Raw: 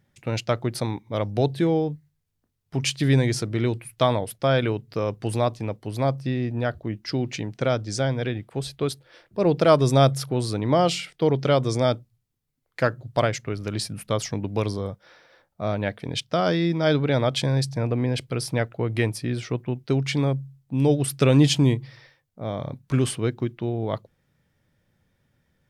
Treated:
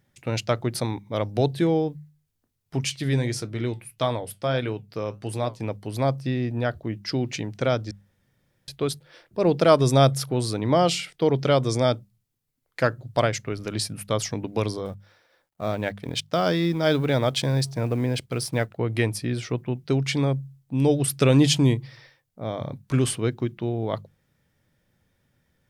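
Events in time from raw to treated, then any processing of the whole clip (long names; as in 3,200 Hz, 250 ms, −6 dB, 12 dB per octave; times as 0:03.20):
0:02.84–0:05.60: flanger 1.6 Hz, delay 6.1 ms, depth 3.8 ms, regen −74%
0:07.91–0:08.68: fill with room tone
0:14.85–0:18.78: mu-law and A-law mismatch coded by A
whole clip: high-shelf EQ 5,800 Hz +4 dB; mains-hum notches 50/100/150/200 Hz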